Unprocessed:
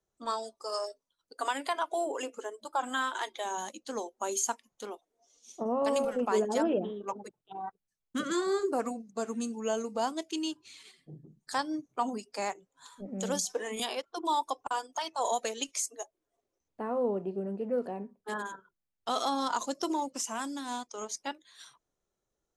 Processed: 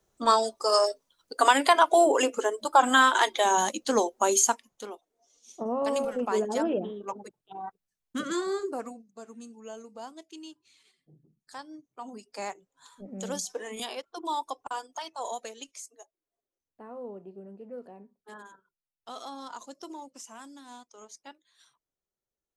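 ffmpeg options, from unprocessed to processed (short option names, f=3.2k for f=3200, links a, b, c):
-af "volume=21dB,afade=t=out:st=4:d=0.88:silence=0.266073,afade=t=out:st=8.35:d=0.77:silence=0.266073,afade=t=in:st=12.01:d=0.4:silence=0.354813,afade=t=out:st=14.84:d=0.95:silence=0.375837"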